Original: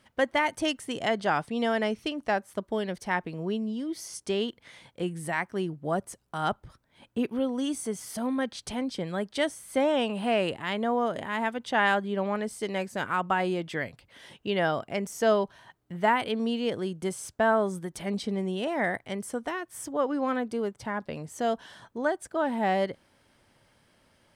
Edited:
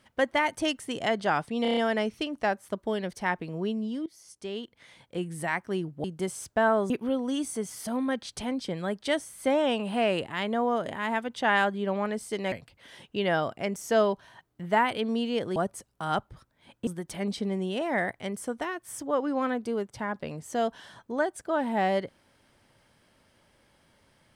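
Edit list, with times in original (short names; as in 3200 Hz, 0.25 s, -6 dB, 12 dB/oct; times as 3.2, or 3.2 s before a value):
1.62 stutter 0.03 s, 6 plays
3.91–5.25 fade in, from -17.5 dB
5.89–7.2 swap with 16.87–17.73
12.82–13.83 cut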